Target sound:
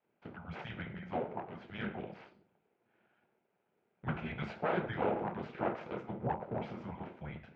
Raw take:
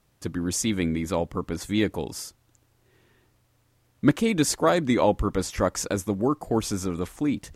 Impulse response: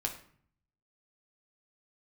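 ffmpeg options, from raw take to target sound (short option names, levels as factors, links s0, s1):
-filter_complex "[0:a]afreqshift=-260[s0];[1:a]atrim=start_sample=2205[s1];[s0][s1]afir=irnorm=-1:irlink=0,aeval=exprs='abs(val(0))':c=same,highpass=260,equalizer=f=280:t=q:w=4:g=-10,equalizer=f=1100:t=q:w=4:g=-9,equalizer=f=1800:t=q:w=4:g=-8,lowpass=f=2200:w=0.5412,lowpass=f=2200:w=1.3066,volume=0.562"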